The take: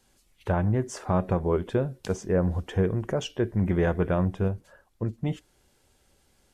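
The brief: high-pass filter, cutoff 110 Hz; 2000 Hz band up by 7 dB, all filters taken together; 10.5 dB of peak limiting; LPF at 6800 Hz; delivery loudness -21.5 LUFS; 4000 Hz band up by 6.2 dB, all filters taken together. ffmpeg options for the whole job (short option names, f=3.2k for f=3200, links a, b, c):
-af "highpass=110,lowpass=6.8k,equalizer=f=2k:t=o:g=8.5,equalizer=f=4k:t=o:g=5,volume=10.5dB,alimiter=limit=-8.5dB:level=0:latency=1"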